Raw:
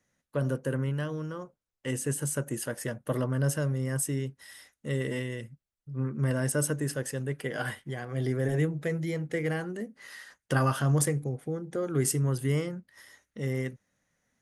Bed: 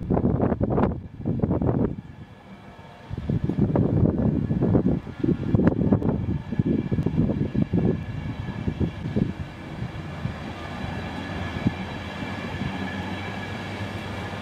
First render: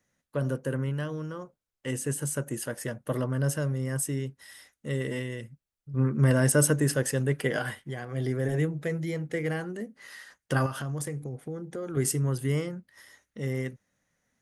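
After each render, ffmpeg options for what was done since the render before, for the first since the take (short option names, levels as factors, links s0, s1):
-filter_complex "[0:a]asettb=1/sr,asplit=3[s0][s1][s2];[s0]atrim=end=10.664[s3];[s1]atrim=start=10.66:end=11.97,asetpts=PTS-STARTPTS,afade=t=in:d=0.004:c=qsin,afade=t=out:st=1.306:d=0.004:c=qsin,acompressor=threshold=0.0251:ratio=3:attack=3.2:release=140:knee=1:detection=peak[s4];[s2]atrim=start=11.966[s5];[s3][s4]acrossfade=d=0.004:c1=hsin:c2=qsin[s6];[s6][s5]acrossfade=d=0.004:c1=qsin:c2=hsin,asplit=3[s7][s8][s9];[s7]atrim=end=5.942[s10];[s8]atrim=start=5.938:end=7.592,asetpts=PTS-STARTPTS,volume=2[s11];[s9]atrim=start=7.588[s12];[s10][s11]acrossfade=d=0.004:c1=hsin:c2=hsin[s13];[s13][s12]acrossfade=d=0.004:c1=hsin:c2=hsin"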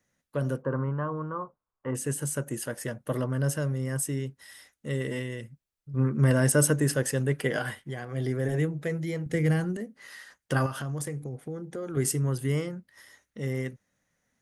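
-filter_complex "[0:a]asettb=1/sr,asplit=3[s0][s1][s2];[s0]atrim=end=0.624[s3];[s1]atrim=start=0.62:end=1.95,asetpts=PTS-STARTPTS,afade=t=in:d=0.004:c=qsin,afade=t=out:st=1.326:d=0.004:c=qsin,lowpass=f=1100:t=q:w=4.1[s4];[s2]atrim=start=1.946[s5];[s3][s4]acrossfade=d=0.004:c1=hsin:c2=qsin[s6];[s6][s5]acrossfade=d=0.004:c1=qsin:c2=hsin,asettb=1/sr,asplit=3[s7][s8][s9];[s7]atrim=end=9.264[s10];[s8]atrim=start=9.26:end=9.77,asetpts=PTS-STARTPTS,afade=t=in:d=0.004:c=qsin,afade=t=out:st=0.506:d=0.004:c=qsin,bass=f=250:g=11,treble=f=4000:g=5[s11];[s9]atrim=start=9.766[s12];[s10][s11]acrossfade=d=0.004:c1=hsin:c2=qsin[s13];[s13][s12]acrossfade=d=0.004:c1=qsin:c2=hsin"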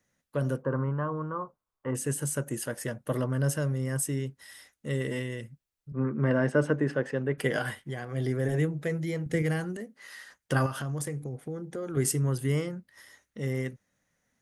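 -filter_complex "[0:a]asettb=1/sr,asplit=3[s0][s1][s2];[s0]atrim=end=5.924[s3];[s1]atrim=start=5.92:end=7.38,asetpts=PTS-STARTPTS,afade=t=in:d=0.004:c=qsin,afade=t=out:st=1.456:d=0.004:c=qsin,highpass=180,lowpass=2100[s4];[s2]atrim=start=7.376[s5];[s3][s4]acrossfade=d=0.004:c1=hsin:c2=qsin[s6];[s6][s5]acrossfade=d=0.004:c1=qsin:c2=hsin,asettb=1/sr,asplit=3[s7][s8][s9];[s7]atrim=end=9.424[s10];[s8]atrim=start=9.42:end=10.17,asetpts=PTS-STARTPTS,afade=t=in:d=0.004:c=qsin,afade=t=out:st=0.746:d=0.004:c=qsin,lowshelf=f=290:g=-7[s11];[s9]atrim=start=10.166[s12];[s10][s11]acrossfade=d=0.004:c1=hsin:c2=qsin[s13];[s13][s12]acrossfade=d=0.004:c1=qsin:c2=hsin"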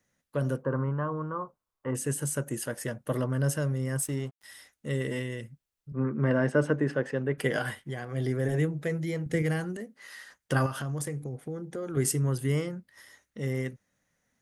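-filter_complex "[0:a]asplit=3[s0][s1][s2];[s0]afade=t=out:st=3.99:d=0.02[s3];[s1]aeval=exprs='sgn(val(0))*max(abs(val(0))-0.00473,0)':c=same,afade=t=in:st=3.99:d=0.02,afade=t=out:st=4.43:d=0.02[s4];[s2]afade=t=in:st=4.43:d=0.02[s5];[s3][s4][s5]amix=inputs=3:normalize=0"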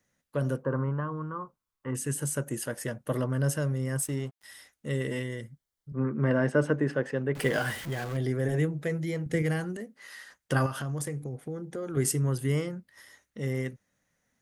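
-filter_complex "[0:a]asettb=1/sr,asplit=3[s0][s1][s2];[s0]atrim=end=1.004[s3];[s1]atrim=start=1:end=2.15,asetpts=PTS-STARTPTS,afade=t=in:d=0.004:c=qsin,afade=t=out:st=1.146:d=0.004:c=qsin,equalizer=f=610:t=o:w=1.1:g=-7.5[s4];[s2]atrim=start=2.146[s5];[s3][s4]acrossfade=d=0.004:c1=hsin:c2=qsin[s6];[s6][s5]acrossfade=d=0.004:c1=qsin:c2=hsin,asettb=1/sr,asplit=3[s7][s8][s9];[s7]atrim=end=5.234[s10];[s8]atrim=start=5.23:end=5.98,asetpts=PTS-STARTPTS,afade=t=in:d=0.004:c=qsin,afade=t=out:st=0.746:d=0.004:c=qsin,asuperstop=centerf=2600:order=4:qfactor=5.6[s11];[s9]atrim=start=5.976[s12];[s10][s11]acrossfade=d=0.004:c1=hsin:c2=qsin[s13];[s13][s12]acrossfade=d=0.004:c1=qsin:c2=hsin,asettb=1/sr,asplit=3[s14][s15][s16];[s14]atrim=end=7.354[s17];[s15]atrim=start=7.35:end=8.17,asetpts=PTS-STARTPTS,afade=t=in:d=0.004:c=qsin,afade=t=out:st=0.816:d=0.004:c=qsin,aeval=exprs='val(0)+0.5*0.0168*sgn(val(0))':c=same[s18];[s16]atrim=start=8.166[s19];[s17][s18]acrossfade=d=0.004:c1=hsin:c2=qsin[s20];[s20][s19]acrossfade=d=0.004:c1=qsin:c2=hsin"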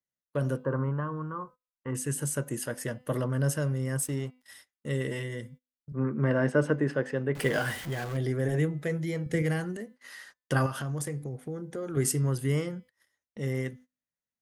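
-af "bandreject=f=252.5:t=h:w=4,bandreject=f=505:t=h:w=4,bandreject=f=757.5:t=h:w=4,bandreject=f=1010:t=h:w=4,bandreject=f=1262.5:t=h:w=4,bandreject=f=1515:t=h:w=4,bandreject=f=1767.5:t=h:w=4,bandreject=f=2020:t=h:w=4,bandreject=f=2272.5:t=h:w=4,bandreject=f=2525:t=h:w=4,bandreject=f=2777.5:t=h:w=4,bandreject=f=3030:t=h:w=4,bandreject=f=3282.5:t=h:w=4,bandreject=f=3535:t=h:w=4,bandreject=f=3787.5:t=h:w=4,bandreject=f=4040:t=h:w=4,bandreject=f=4292.5:t=h:w=4,bandreject=f=4545:t=h:w=4,bandreject=f=4797.5:t=h:w=4,bandreject=f=5050:t=h:w=4,agate=range=0.0631:threshold=0.00355:ratio=16:detection=peak"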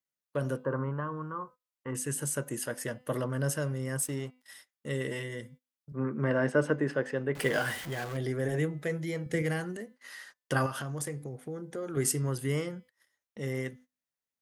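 -af "lowshelf=f=210:g=-6.5"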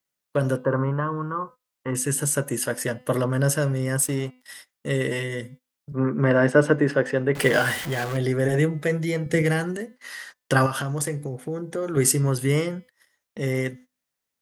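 -af "volume=2.82"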